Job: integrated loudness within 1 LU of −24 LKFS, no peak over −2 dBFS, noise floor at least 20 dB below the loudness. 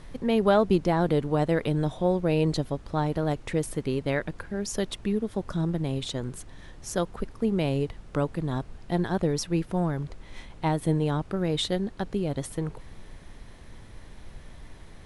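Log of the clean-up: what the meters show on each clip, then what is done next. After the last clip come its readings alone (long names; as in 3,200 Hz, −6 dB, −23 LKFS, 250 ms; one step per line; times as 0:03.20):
background noise floor −47 dBFS; target noise floor −48 dBFS; integrated loudness −28.0 LKFS; sample peak −8.0 dBFS; target loudness −24.0 LKFS
→ noise reduction from a noise print 6 dB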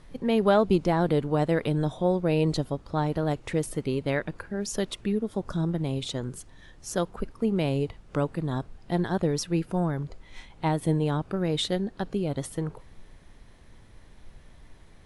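background noise floor −52 dBFS; integrated loudness −28.0 LKFS; sample peak −8.0 dBFS; target loudness −24.0 LKFS
→ level +4 dB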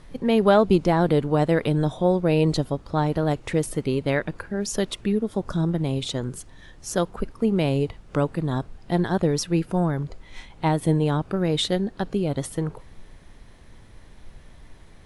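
integrated loudness −24.0 LKFS; sample peak −4.0 dBFS; background noise floor −48 dBFS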